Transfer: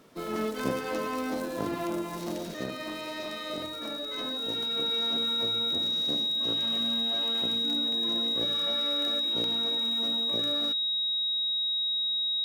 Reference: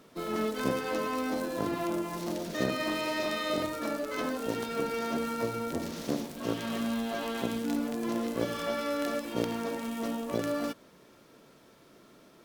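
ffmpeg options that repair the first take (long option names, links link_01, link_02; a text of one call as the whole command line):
ffmpeg -i in.wav -af "bandreject=frequency=3800:width=30,asetnsamples=nb_out_samples=441:pad=0,asendcmd='2.54 volume volume 5.5dB',volume=0dB" out.wav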